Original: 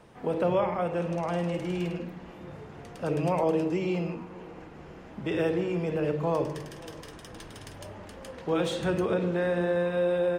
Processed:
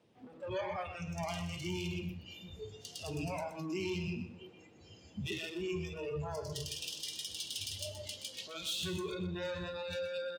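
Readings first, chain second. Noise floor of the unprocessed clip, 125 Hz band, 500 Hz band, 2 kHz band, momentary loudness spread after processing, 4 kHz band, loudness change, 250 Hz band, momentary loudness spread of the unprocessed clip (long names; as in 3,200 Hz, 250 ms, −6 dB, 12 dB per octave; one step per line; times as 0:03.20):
−47 dBFS, −8.5 dB, −13.0 dB, −6.5 dB, 11 LU, +4.0 dB, −10.5 dB, −11.5 dB, 18 LU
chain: sub-octave generator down 1 octave, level −1 dB
parametric band 1,600 Hz −11 dB 1.8 octaves
in parallel at +1 dB: downward compressor, threshold −35 dBFS, peak gain reduction 12 dB
on the sum: meter weighting curve D
brickwall limiter −23.5 dBFS, peak gain reduction 8.5 dB
soft clipping −36 dBFS, distortion −8 dB
noise reduction from a noise print of the clip's start 21 dB
high-pass filter 66 Hz
on a send: repeating echo 124 ms, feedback 24%, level −10.5 dB
on the sum: one half of a high-frequency compander decoder only
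level +3.5 dB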